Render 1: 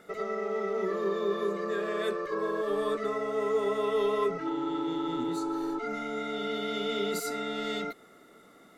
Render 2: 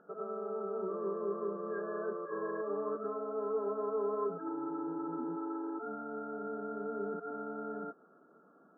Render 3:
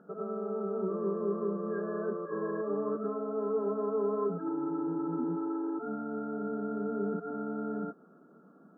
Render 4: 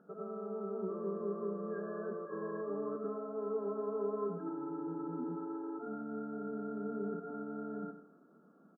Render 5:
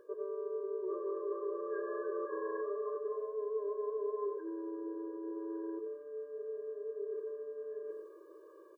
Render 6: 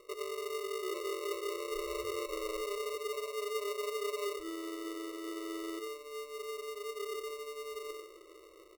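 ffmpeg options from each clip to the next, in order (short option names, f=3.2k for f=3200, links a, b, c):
-af "afftfilt=real='re*between(b*sr/4096,150,1700)':imag='im*between(b*sr/4096,150,1700)':win_size=4096:overlap=0.75,volume=-6.5dB"
-af "equalizer=f=180:t=o:w=1.6:g=11.5"
-af "aecho=1:1:96|192|288|384:0.299|0.102|0.0345|0.0117,volume=-6dB"
-af "areverse,acompressor=threshold=-49dB:ratio=5,areverse,afftfilt=real='re*eq(mod(floor(b*sr/1024/310),2),1)':imag='im*eq(mod(floor(b*sr/1024/310),2),1)':win_size=1024:overlap=0.75,volume=14dB"
-af "acrusher=samples=27:mix=1:aa=0.000001"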